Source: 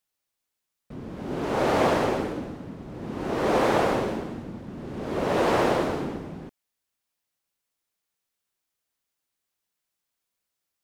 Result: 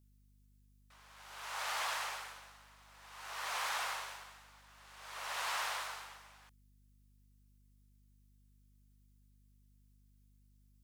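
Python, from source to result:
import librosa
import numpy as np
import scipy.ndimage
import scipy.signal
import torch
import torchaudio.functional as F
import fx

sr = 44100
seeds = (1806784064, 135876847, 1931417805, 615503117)

y = scipy.signal.sosfilt(scipy.signal.butter(4, 980.0, 'highpass', fs=sr, output='sos'), x)
y = fx.high_shelf(y, sr, hz=4000.0, db=10.5)
y = fx.add_hum(y, sr, base_hz=50, snr_db=22)
y = fx.transformer_sat(y, sr, knee_hz=2500.0)
y = y * librosa.db_to_amplitude(-8.0)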